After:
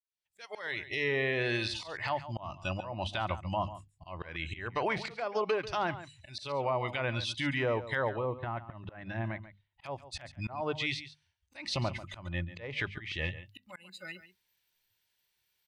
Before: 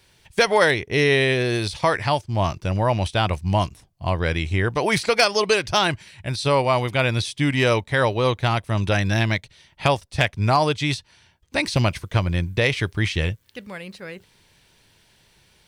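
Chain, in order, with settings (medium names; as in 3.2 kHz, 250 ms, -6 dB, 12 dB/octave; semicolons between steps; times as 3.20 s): fade-in on the opening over 1.48 s; hum notches 50/100/150/200/250 Hz; spectral noise reduction 21 dB; low-pass that closes with the level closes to 750 Hz, closed at -14.5 dBFS; tilt shelf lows -7 dB, about 770 Hz; hard clipper -6.5 dBFS, distortion -33 dB; peak limiter -16 dBFS, peak gain reduction 9.5 dB; slow attack 237 ms; 8.16–9.84 s: tape spacing loss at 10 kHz 42 dB; delay 140 ms -14 dB; trim -5.5 dB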